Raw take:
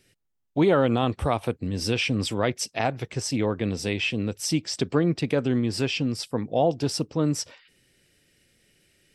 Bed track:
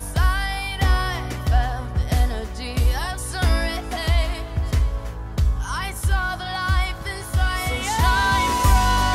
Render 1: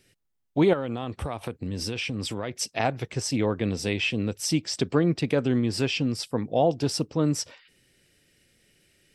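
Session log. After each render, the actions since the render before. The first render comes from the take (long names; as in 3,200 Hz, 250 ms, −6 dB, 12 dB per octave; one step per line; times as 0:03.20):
0:00.73–0:02.59: downward compressor 4 to 1, threshold −27 dBFS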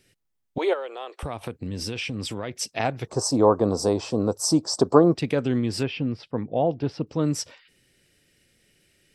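0:00.58–0:01.23: Butterworth high-pass 380 Hz 48 dB per octave
0:03.07–0:05.15: drawn EQ curve 170 Hz 0 dB, 710 Hz +13 dB, 1,100 Hz +14 dB, 2,100 Hz −18 dB, 3,000 Hz −16 dB, 4,400 Hz +2 dB, 8,300 Hz +6 dB, 13,000 Hz −1 dB
0:05.83–0:07.07: high-frequency loss of the air 330 metres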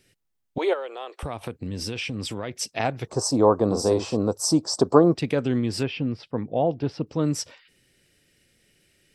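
0:03.66–0:04.17: double-tracking delay 47 ms −6 dB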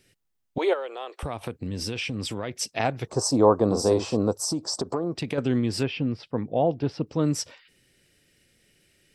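0:04.35–0:05.38: downward compressor 5 to 1, threshold −24 dBFS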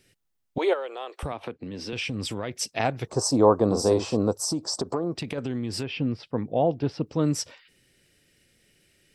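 0:01.32–0:01.93: three-way crossover with the lows and the highs turned down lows −12 dB, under 200 Hz, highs −18 dB, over 4,900 Hz
0:05.16–0:06.00: downward compressor 3 to 1, threshold −27 dBFS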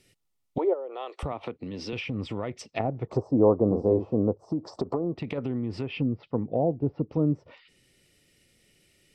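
treble cut that deepens with the level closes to 580 Hz, closed at −23 dBFS
notch filter 1,600 Hz, Q 5.5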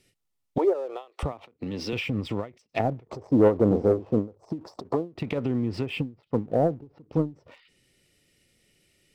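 leveller curve on the samples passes 1
every ending faded ahead of time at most 210 dB per second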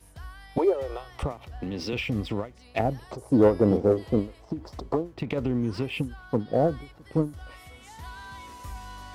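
mix in bed track −23.5 dB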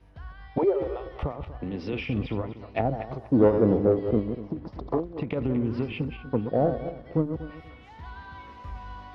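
feedback delay that plays each chunk backwards 121 ms, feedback 45%, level −8 dB
high-frequency loss of the air 290 metres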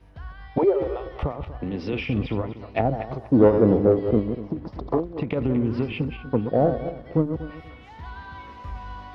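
level +3.5 dB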